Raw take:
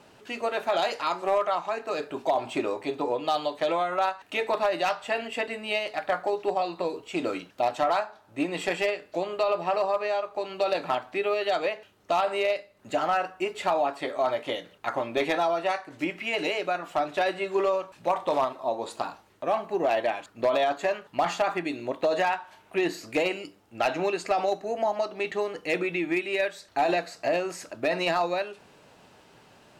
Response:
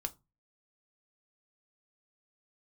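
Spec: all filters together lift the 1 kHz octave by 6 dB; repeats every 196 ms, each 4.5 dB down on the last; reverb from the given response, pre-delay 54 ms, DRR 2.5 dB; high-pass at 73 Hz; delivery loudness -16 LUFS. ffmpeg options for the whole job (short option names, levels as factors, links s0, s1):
-filter_complex "[0:a]highpass=73,equalizer=f=1000:t=o:g=8.5,aecho=1:1:196|392|588|784|980|1176|1372|1568|1764:0.596|0.357|0.214|0.129|0.0772|0.0463|0.0278|0.0167|0.01,asplit=2[s0][s1];[1:a]atrim=start_sample=2205,adelay=54[s2];[s1][s2]afir=irnorm=-1:irlink=0,volume=0.794[s3];[s0][s3]amix=inputs=2:normalize=0,volume=1.68"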